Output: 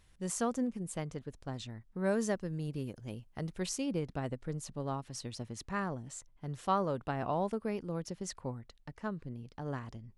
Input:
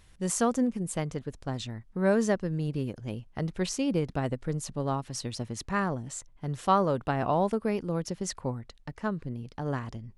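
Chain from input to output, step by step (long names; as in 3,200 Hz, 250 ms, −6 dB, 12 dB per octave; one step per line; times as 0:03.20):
0:02.04–0:03.86: high-shelf EQ 8,000 Hz +10 dB
level −7 dB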